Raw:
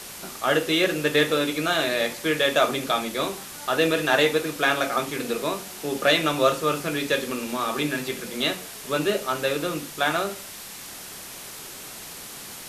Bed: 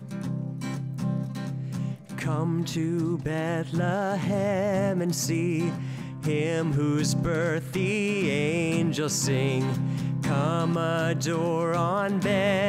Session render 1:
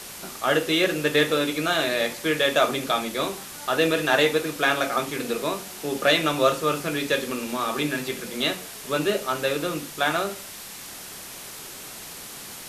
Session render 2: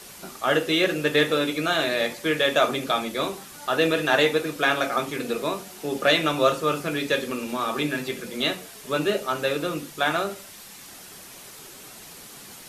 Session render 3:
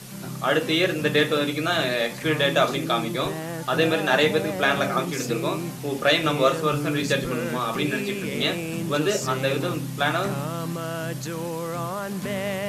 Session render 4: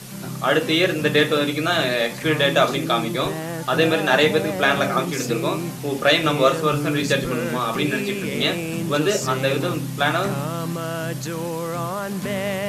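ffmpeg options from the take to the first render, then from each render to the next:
-af anull
-af "afftdn=nr=6:nf=-40"
-filter_complex "[1:a]volume=0.596[s0];[0:a][s0]amix=inputs=2:normalize=0"
-af "volume=1.41"

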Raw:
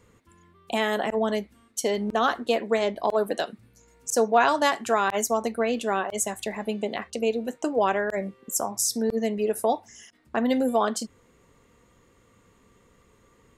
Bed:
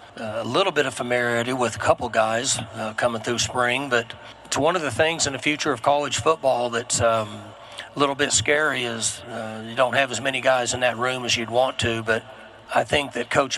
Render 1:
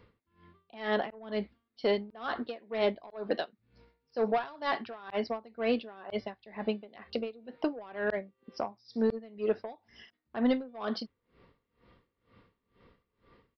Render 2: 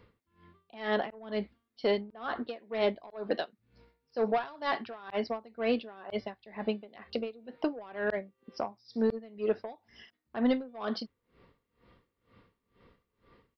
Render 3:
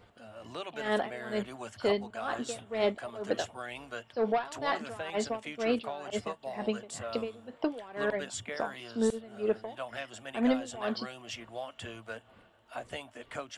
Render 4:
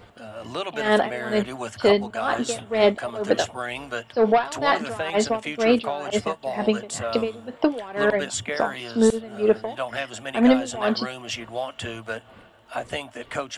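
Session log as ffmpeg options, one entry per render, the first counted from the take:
-af "aresample=11025,asoftclip=type=tanh:threshold=0.158,aresample=44100,aeval=exprs='val(0)*pow(10,-24*(0.5-0.5*cos(2*PI*2.1*n/s))/20)':c=same"
-filter_complex "[0:a]asettb=1/sr,asplit=3[s0][s1][s2];[s0]atrim=end=2.014[s3];[s1]atrim=start=2.01:end=2.48,asetpts=PTS-STARTPTS,afade=t=in:d=0.004:c=qsin,afade=t=out:st=0.466:d=0.004:c=qsin,highshelf=f=4900:g=-11[s4];[s2]atrim=start=2.476[s5];[s3][s4]acrossfade=d=0.004:c1=hsin:c2=qsin[s6];[s6][s5]acrossfade=d=0.004:c1=qsin:c2=hsin"
-filter_complex "[1:a]volume=0.1[s0];[0:a][s0]amix=inputs=2:normalize=0"
-af "volume=3.35"

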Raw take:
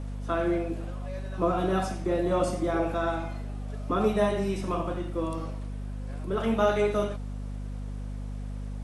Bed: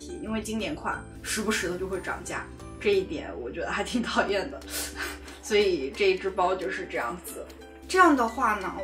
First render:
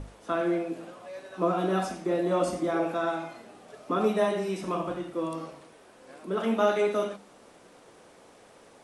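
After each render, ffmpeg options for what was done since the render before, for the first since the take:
-af "bandreject=f=50:t=h:w=6,bandreject=f=100:t=h:w=6,bandreject=f=150:t=h:w=6,bandreject=f=200:t=h:w=6,bandreject=f=250:t=h:w=6"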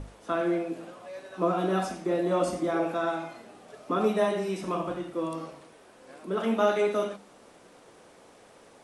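-af anull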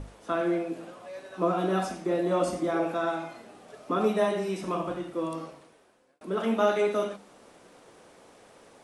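-filter_complex "[0:a]asplit=2[s0][s1];[s0]atrim=end=6.21,asetpts=PTS-STARTPTS,afade=t=out:st=5.37:d=0.84[s2];[s1]atrim=start=6.21,asetpts=PTS-STARTPTS,afade=t=in:d=0.004:c=hsin[s3];[s2][s3]concat=n=2:v=0:a=1"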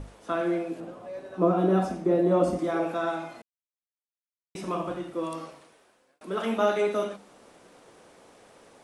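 -filter_complex "[0:a]asettb=1/sr,asplit=3[s0][s1][s2];[s0]atrim=end=0.804[s3];[s1]atrim=start=0.8:end=2.59,asetpts=PTS-STARTPTS,afade=t=in:d=0.004:c=qsin,afade=t=out:st=1.786:d=0.004:c=qsin,tiltshelf=f=970:g=6.5[s4];[s2]atrim=start=2.586[s5];[s3][s4]acrossfade=d=0.004:c1=hsin:c2=qsin[s6];[s6][s5]acrossfade=d=0.004:c1=qsin:c2=hsin,asettb=1/sr,asplit=3[s7][s8][s9];[s7]atrim=end=5.234[s10];[s8]atrim=start=5.23:end=6.58,asetpts=PTS-STARTPTS,afade=t=in:d=0.004:c=qsin,afade=t=out:st=1.346:d=0.004:c=qsin,tiltshelf=f=680:g=-3[s11];[s9]atrim=start=6.576[s12];[s10][s11]acrossfade=d=0.004:c1=hsin:c2=qsin[s13];[s13][s12]acrossfade=d=0.004:c1=qsin:c2=hsin,asplit=3[s14][s15][s16];[s14]atrim=end=3.42,asetpts=PTS-STARTPTS,afade=t=out:st=3.416:d=0.004:c=hsin[s17];[s15]atrim=start=3.42:end=4.55,asetpts=PTS-STARTPTS,volume=0[s18];[s16]atrim=start=4.55,asetpts=PTS-STARTPTS,afade=t=in:d=0.004:c=hsin[s19];[s17][s18][s19]concat=n=3:v=0:a=1"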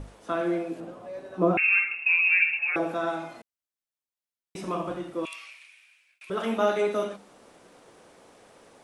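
-filter_complex "[0:a]asettb=1/sr,asplit=3[s0][s1][s2];[s0]atrim=end=1.574[s3];[s1]atrim=start=1.57:end=2.76,asetpts=PTS-STARTPTS,afade=t=in:d=0.004:c=qsin,afade=t=out:st=1.186:d=0.004:c=qsin,lowpass=f=2500:t=q:w=0.5098,lowpass=f=2500:t=q:w=0.6013,lowpass=f=2500:t=q:w=0.9,lowpass=f=2500:t=q:w=2.563,afreqshift=-2900[s4];[s2]atrim=start=2.756[s5];[s3][s4]acrossfade=d=0.004:c1=hsin:c2=qsin[s6];[s6][s5]acrossfade=d=0.004:c1=qsin:c2=hsin,asettb=1/sr,asplit=3[s7][s8][s9];[s7]atrim=end=5.254[s10];[s8]atrim=start=5.25:end=6.3,asetpts=PTS-STARTPTS,afade=t=in:d=0.004:c=qsin,afade=t=out:st=1.046:d=0.004:c=qsin,highpass=f=2400:t=q:w=8.5[s11];[s9]atrim=start=6.296[s12];[s10][s11]acrossfade=d=0.004:c1=hsin:c2=qsin[s13];[s13][s12]acrossfade=d=0.004:c1=qsin:c2=hsin"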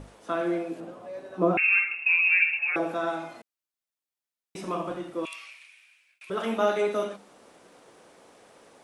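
-af "lowshelf=f=100:g=-8"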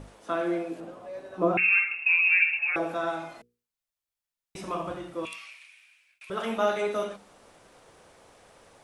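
-af "bandreject=f=60:t=h:w=6,bandreject=f=120:t=h:w=6,bandreject=f=180:t=h:w=6,bandreject=f=240:t=h:w=6,bandreject=f=300:t=h:w=6,bandreject=f=360:t=h:w=6,bandreject=f=420:t=h:w=6,bandreject=f=480:t=h:w=6,asubboost=boost=5.5:cutoff=100"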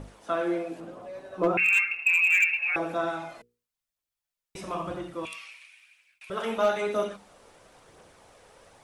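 -af "aphaser=in_gain=1:out_gain=1:delay=2.4:decay=0.29:speed=1:type=triangular,volume=6.31,asoftclip=hard,volume=0.158"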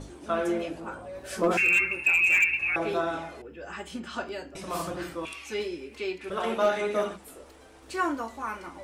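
-filter_complex "[1:a]volume=0.335[s0];[0:a][s0]amix=inputs=2:normalize=0"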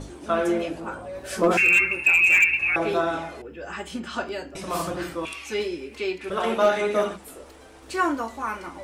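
-af "volume=1.68"

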